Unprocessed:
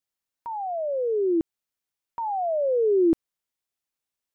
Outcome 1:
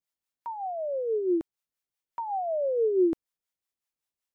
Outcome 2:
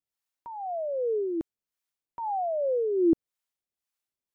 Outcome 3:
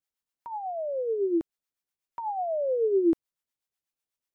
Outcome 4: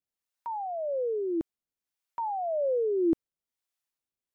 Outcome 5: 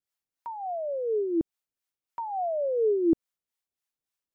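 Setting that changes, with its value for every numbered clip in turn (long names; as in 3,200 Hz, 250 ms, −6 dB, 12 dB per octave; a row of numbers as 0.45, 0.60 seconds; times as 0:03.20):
two-band tremolo in antiphase, speed: 5.3, 1.9, 8.1, 1.2, 3.5 Hertz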